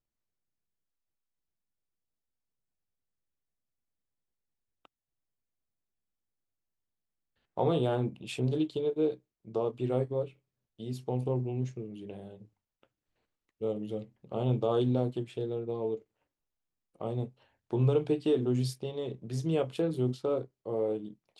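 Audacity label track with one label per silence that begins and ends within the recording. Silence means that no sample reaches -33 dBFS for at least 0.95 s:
12.130000	13.620000	silence
15.950000	17.010000	silence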